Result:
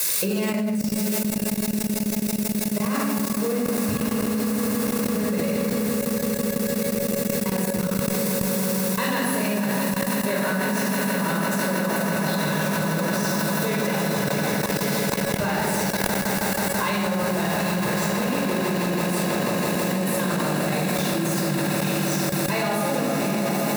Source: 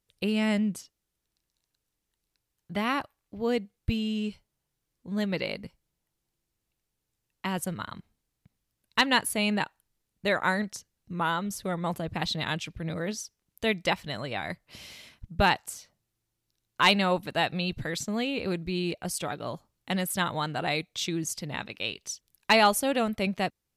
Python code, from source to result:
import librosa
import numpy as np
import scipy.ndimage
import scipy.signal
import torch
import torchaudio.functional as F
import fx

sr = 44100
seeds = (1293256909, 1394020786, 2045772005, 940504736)

y = x + 0.5 * 10.0 ** (-20.5 / 20.0) * np.diff(np.sign(x), prepend=np.sign(x[:1]))
y = scipy.signal.sosfilt(scipy.signal.butter(2, 200.0, 'highpass', fs=sr, output='sos'), y)
y = fx.high_shelf(y, sr, hz=2300.0, db=-7.0)
y = fx.echo_swell(y, sr, ms=163, loudest=8, wet_db=-10)
y = fx.room_shoebox(y, sr, seeds[0], volume_m3=2600.0, walls='mixed', distance_m=5.2)
y = fx.level_steps(y, sr, step_db=22)
y = fx.low_shelf(y, sr, hz=320.0, db=8.5)
y = fx.notch(y, sr, hz=3100.0, q=9.9)
y = fx.comb_fb(y, sr, f0_hz=560.0, decay_s=0.22, harmonics='all', damping=0.0, mix_pct=60)
y = fx.env_flatten(y, sr, amount_pct=100)